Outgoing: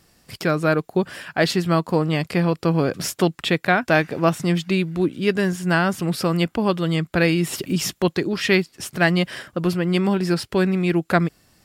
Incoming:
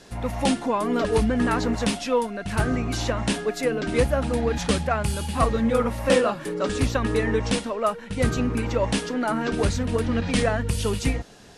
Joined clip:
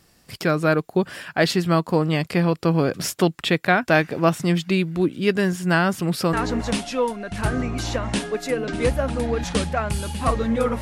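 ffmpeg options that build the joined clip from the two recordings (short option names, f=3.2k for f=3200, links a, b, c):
-filter_complex "[0:a]apad=whole_dur=10.81,atrim=end=10.81,atrim=end=6.332[a];[1:a]atrim=start=1.468:end=5.95[b];[a][b]acrossfade=d=0.004:c1=hsin:c2=hsin"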